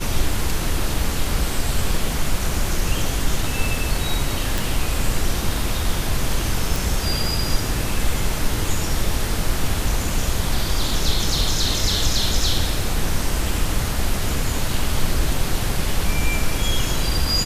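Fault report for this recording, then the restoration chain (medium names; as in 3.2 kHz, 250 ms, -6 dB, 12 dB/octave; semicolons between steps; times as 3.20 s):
4.58 s: pop
6.76 s: pop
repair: de-click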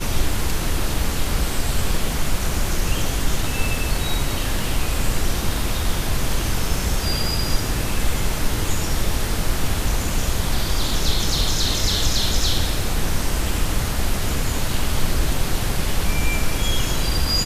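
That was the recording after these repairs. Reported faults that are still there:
nothing left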